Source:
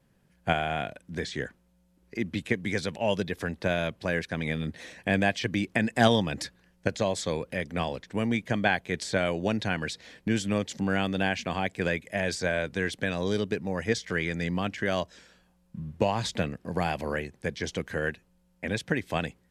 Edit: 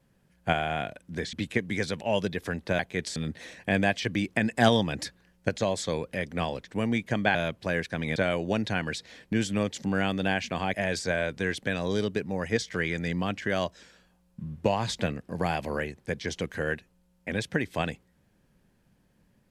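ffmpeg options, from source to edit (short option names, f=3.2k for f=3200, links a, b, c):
-filter_complex "[0:a]asplit=7[a][b][c][d][e][f][g];[a]atrim=end=1.332[h];[b]atrim=start=2.278:end=3.742[i];[c]atrim=start=8.738:end=9.112[j];[d]atrim=start=4.548:end=8.742[k];[e]atrim=start=3.738:end=4.552[l];[f]atrim=start=9.108:end=11.692[m];[g]atrim=start=12.098[n];[h][i]acrossfade=d=0.004:c1=hsin:c2=hsin[o];[o][j]acrossfade=d=0.004:c1=hsin:c2=hsin[p];[p][k]acrossfade=d=0.004:c1=hsin:c2=hsin[q];[q][l]acrossfade=d=0.004:c1=hsin:c2=hsin[r];[r][m]acrossfade=d=0.004:c1=hsin:c2=hsin[s];[s][n]acrossfade=d=0.004:c1=hsin:c2=hsin"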